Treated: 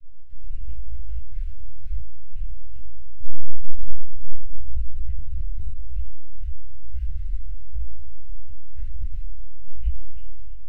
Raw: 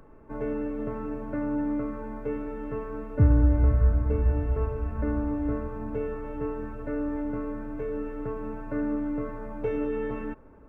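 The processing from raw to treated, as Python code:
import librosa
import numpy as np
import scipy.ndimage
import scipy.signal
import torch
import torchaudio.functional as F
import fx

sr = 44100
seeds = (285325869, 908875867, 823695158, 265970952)

p1 = 10.0 ** (-11.5 / 20.0) * np.tanh(x / 10.0 ** (-11.5 / 20.0))
p2 = fx.low_shelf(p1, sr, hz=99.0, db=7.0)
p3 = p2 * np.sin(2.0 * np.pi * 220.0 * np.arange(len(p2)) / sr)
p4 = fx.lpc_vocoder(p3, sr, seeds[0], excitation='pitch_kept', order=10)
p5 = p4 + fx.echo_single(p4, sr, ms=299, db=-14.5, dry=0)
p6 = np.sign(p5) * np.maximum(np.abs(p5) - 10.0 ** (-56.5 / 20.0), 0.0)
p7 = scipy.signal.sosfilt(scipy.signal.cheby2(4, 70, [200.0, 820.0], 'bandstop', fs=sr, output='sos'), p6)
p8 = fx.room_shoebox(p7, sr, seeds[1], volume_m3=880.0, walls='furnished', distance_m=5.1)
p9 = fx.over_compress(p8, sr, threshold_db=-22.0, ratio=-0.5)
p10 = p8 + (p9 * 10.0 ** (-2.5 / 20.0))
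p11 = fx.high_shelf(p10, sr, hz=2000.0, db=-11.5)
p12 = fx.detune_double(p11, sr, cents=35)
y = p12 * 10.0 ** (-4.0 / 20.0)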